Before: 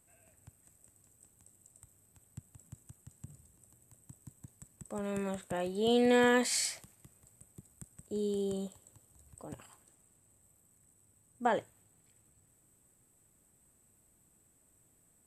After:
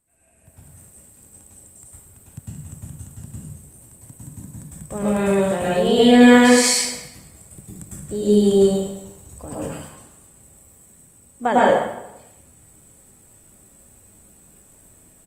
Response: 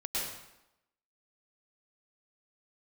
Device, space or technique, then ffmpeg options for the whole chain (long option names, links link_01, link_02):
speakerphone in a meeting room: -filter_complex "[1:a]atrim=start_sample=2205[link_01];[0:a][link_01]afir=irnorm=-1:irlink=0,asplit=2[link_02][link_03];[link_03]adelay=180,highpass=300,lowpass=3400,asoftclip=type=hard:threshold=-20.5dB,volume=-25dB[link_04];[link_02][link_04]amix=inputs=2:normalize=0,dynaudnorm=framelen=390:gausssize=3:maxgain=13.5dB" -ar 48000 -c:a libopus -b:a 32k